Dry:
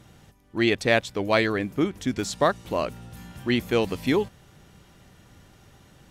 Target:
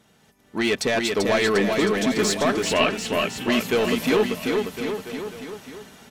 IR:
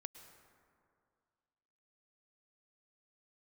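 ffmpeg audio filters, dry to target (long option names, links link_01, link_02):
-filter_complex "[0:a]highpass=frequency=260:poles=1,aecho=1:1:4.6:0.42,alimiter=limit=-15dB:level=0:latency=1:release=50,dynaudnorm=framelen=190:gausssize=5:maxgain=13dB,asoftclip=type=tanh:threshold=-12.5dB,asettb=1/sr,asplit=3[link_01][link_02][link_03];[link_01]atrim=end=2.624[link_04];[link_02]atrim=start=2.62:end=3.09,asetpts=PTS-STARTPTS,afade=type=in:duration=0.004:curve=qsin,afade=type=out:start_time=0.466:duration=0.004:curve=qsin,lowpass=frequency=2800:width_type=q:width=4.8[link_05];[link_03]atrim=start=3.086[link_06];[link_04][link_05]acrossfade=duration=0.004:curve1=hsin:curve2=qsin[link_07];[link_07][link_06]acrossfade=duration=0.004:curve1=qsin:curve2=hsin,aecho=1:1:390|741|1057|1341|1597:0.631|0.398|0.251|0.158|0.1,volume=-3.5dB"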